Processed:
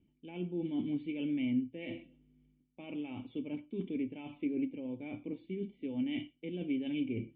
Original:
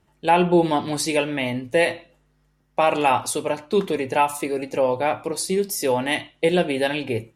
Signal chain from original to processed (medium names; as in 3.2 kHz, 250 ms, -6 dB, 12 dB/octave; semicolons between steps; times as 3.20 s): reverse; compression 10:1, threshold -30 dBFS, peak gain reduction 18 dB; reverse; cascade formant filter i; distance through air 87 m; trim +6.5 dB